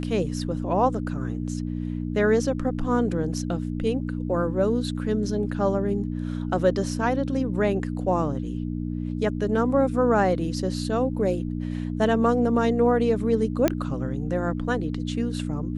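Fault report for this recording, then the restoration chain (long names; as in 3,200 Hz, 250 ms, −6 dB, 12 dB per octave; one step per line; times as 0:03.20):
mains hum 60 Hz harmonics 5 −29 dBFS
0:13.68: click −7 dBFS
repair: click removal
hum removal 60 Hz, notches 5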